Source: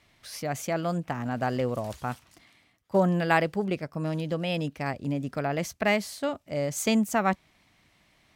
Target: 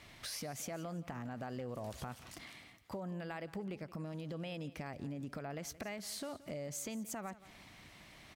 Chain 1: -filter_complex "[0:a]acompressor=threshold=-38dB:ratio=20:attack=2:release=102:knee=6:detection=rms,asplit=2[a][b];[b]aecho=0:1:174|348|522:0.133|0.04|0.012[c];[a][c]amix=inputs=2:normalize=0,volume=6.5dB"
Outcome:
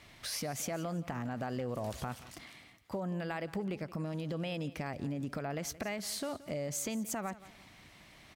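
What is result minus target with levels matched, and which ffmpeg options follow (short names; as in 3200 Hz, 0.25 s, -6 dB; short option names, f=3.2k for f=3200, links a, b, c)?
compressor: peak gain reduction -5.5 dB
-filter_complex "[0:a]acompressor=threshold=-44dB:ratio=20:attack=2:release=102:knee=6:detection=rms,asplit=2[a][b];[b]aecho=0:1:174|348|522:0.133|0.04|0.012[c];[a][c]amix=inputs=2:normalize=0,volume=6.5dB"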